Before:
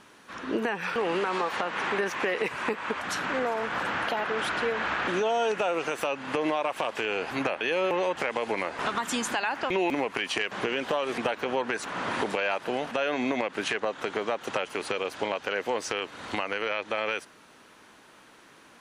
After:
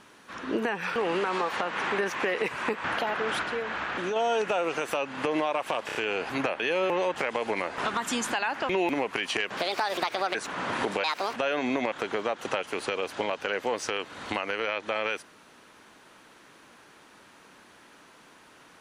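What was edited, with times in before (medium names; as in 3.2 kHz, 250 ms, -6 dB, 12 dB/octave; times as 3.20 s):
2.84–3.94 s: delete
4.53–5.26 s: gain -3.5 dB
6.96 s: stutter 0.03 s, 4 plays
10.58–11.73 s: speed 148%
12.42–12.89 s: speed 157%
13.47–13.94 s: delete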